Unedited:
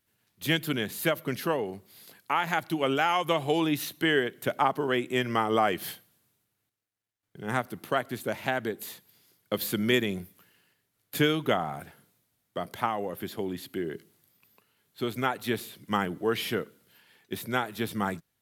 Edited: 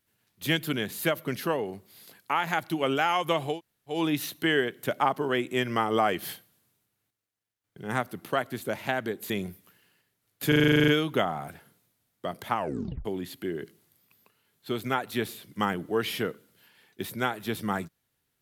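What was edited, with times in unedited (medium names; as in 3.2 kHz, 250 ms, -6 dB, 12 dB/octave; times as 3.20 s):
3.53 s: insert room tone 0.41 s, crossfade 0.16 s
8.89–10.02 s: delete
11.20 s: stutter 0.04 s, 11 plays
12.88 s: tape stop 0.49 s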